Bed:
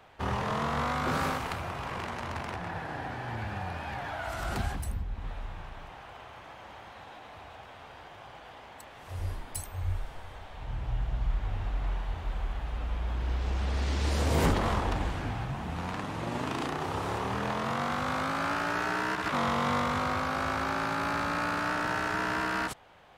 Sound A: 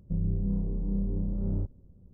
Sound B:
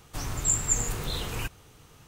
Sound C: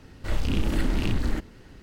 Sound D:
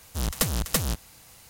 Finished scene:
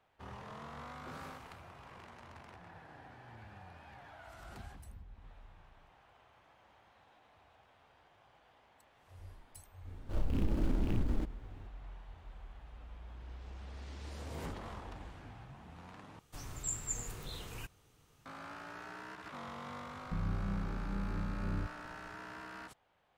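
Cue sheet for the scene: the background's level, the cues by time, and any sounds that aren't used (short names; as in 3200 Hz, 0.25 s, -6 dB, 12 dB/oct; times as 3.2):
bed -17.5 dB
9.85 add C -7 dB + median filter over 25 samples
16.19 replace with B -13 dB
20.01 add A -3 dB + harmonic-percussive split harmonic -7 dB
not used: D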